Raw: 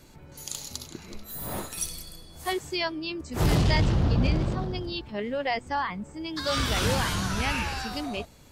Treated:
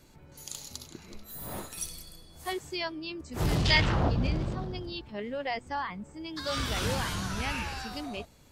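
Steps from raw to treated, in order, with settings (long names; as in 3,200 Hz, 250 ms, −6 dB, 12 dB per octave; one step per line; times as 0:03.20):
0:03.64–0:04.09: parametric band 4,600 Hz → 660 Hz +13 dB 2.2 octaves
level −5 dB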